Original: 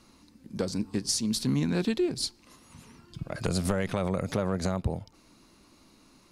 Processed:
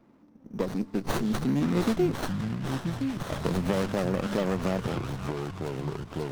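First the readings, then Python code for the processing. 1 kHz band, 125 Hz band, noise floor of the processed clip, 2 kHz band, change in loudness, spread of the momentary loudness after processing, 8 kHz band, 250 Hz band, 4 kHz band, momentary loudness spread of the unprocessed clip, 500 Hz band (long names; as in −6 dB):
+5.0 dB, +2.0 dB, −57 dBFS, +3.0 dB, 0.0 dB, 8 LU, −9.0 dB, +2.5 dB, −5.0 dB, 11 LU, +2.5 dB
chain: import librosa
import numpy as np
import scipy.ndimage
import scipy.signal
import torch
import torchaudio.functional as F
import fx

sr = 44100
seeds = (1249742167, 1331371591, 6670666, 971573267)

p1 = scipy.signal.sosfilt(scipy.signal.butter(2, 140.0, 'highpass', fs=sr, output='sos'), x)
p2 = fx.env_lowpass(p1, sr, base_hz=1100.0, full_db=-25.0)
p3 = scipy.signal.sosfilt(scipy.signal.butter(2, 10000.0, 'lowpass', fs=sr, output='sos'), p2)
p4 = fx.high_shelf(p3, sr, hz=7300.0, db=9.5)
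p5 = fx.sample_hold(p4, sr, seeds[0], rate_hz=5900.0, jitter_pct=0)
p6 = p4 + F.gain(torch.from_numpy(p5), -12.0).numpy()
p7 = fx.echo_pitch(p6, sr, ms=351, semitones=-5, count=3, db_per_echo=-6.0)
p8 = p7 + fx.echo_stepped(p7, sr, ms=528, hz=1400.0, octaves=0.7, feedback_pct=70, wet_db=-0.5, dry=0)
y = fx.running_max(p8, sr, window=17)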